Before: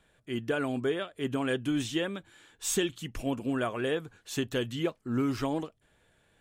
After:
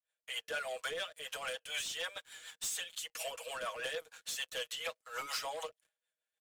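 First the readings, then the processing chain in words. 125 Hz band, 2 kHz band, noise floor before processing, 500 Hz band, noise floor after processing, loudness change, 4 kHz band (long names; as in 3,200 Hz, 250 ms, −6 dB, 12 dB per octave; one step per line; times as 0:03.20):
−31.0 dB, −2.5 dB, −68 dBFS, −11.0 dB, below −85 dBFS, −7.5 dB, 0.0 dB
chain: downward expander −57 dBFS
Butterworth high-pass 480 Hz 96 dB per octave
high-shelf EQ 2,200 Hz +10.5 dB
comb filter 6.3 ms, depth 69%
downward compressor 5 to 1, threshold −33 dBFS, peak gain reduction 14.5 dB
leveller curve on the samples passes 3
rotating-speaker cabinet horn 6.7 Hz
two-band tremolo in antiphase 4.2 Hz, depth 50%, crossover 680 Hz
level −6.5 dB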